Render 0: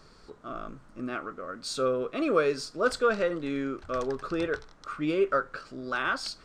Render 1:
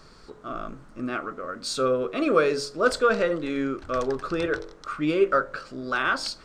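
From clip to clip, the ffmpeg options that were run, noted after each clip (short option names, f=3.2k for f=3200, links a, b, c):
-af "bandreject=f=47.13:t=h:w=4,bandreject=f=94.26:t=h:w=4,bandreject=f=141.39:t=h:w=4,bandreject=f=188.52:t=h:w=4,bandreject=f=235.65:t=h:w=4,bandreject=f=282.78:t=h:w=4,bandreject=f=329.91:t=h:w=4,bandreject=f=377.04:t=h:w=4,bandreject=f=424.17:t=h:w=4,bandreject=f=471.3:t=h:w=4,bandreject=f=518.43:t=h:w=4,bandreject=f=565.56:t=h:w=4,bandreject=f=612.69:t=h:w=4,bandreject=f=659.82:t=h:w=4,bandreject=f=706.95:t=h:w=4,bandreject=f=754.08:t=h:w=4,bandreject=f=801.21:t=h:w=4,bandreject=f=848.34:t=h:w=4,bandreject=f=895.47:t=h:w=4,bandreject=f=942.6:t=h:w=4,bandreject=f=989.73:t=h:w=4,bandreject=f=1.03686k:t=h:w=4,volume=4.5dB"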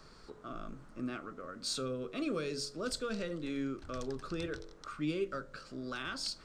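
-filter_complex "[0:a]acrossover=split=280|3000[a][b][c];[b]acompressor=threshold=-40dB:ratio=3[d];[a][d][c]amix=inputs=3:normalize=0,volume=-5.5dB"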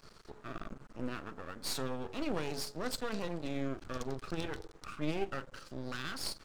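-af "aeval=exprs='max(val(0),0)':c=same,volume=3.5dB"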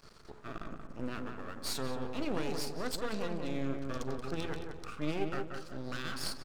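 -filter_complex "[0:a]asplit=2[a][b];[b]adelay=181,lowpass=f=1.7k:p=1,volume=-4.5dB,asplit=2[c][d];[d]adelay=181,lowpass=f=1.7k:p=1,volume=0.4,asplit=2[e][f];[f]adelay=181,lowpass=f=1.7k:p=1,volume=0.4,asplit=2[g][h];[h]adelay=181,lowpass=f=1.7k:p=1,volume=0.4,asplit=2[i][j];[j]adelay=181,lowpass=f=1.7k:p=1,volume=0.4[k];[a][c][e][g][i][k]amix=inputs=6:normalize=0"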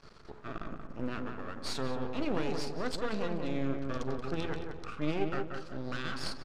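-af "adynamicsmooth=sensitivity=1.5:basefreq=6k,volume=2.5dB"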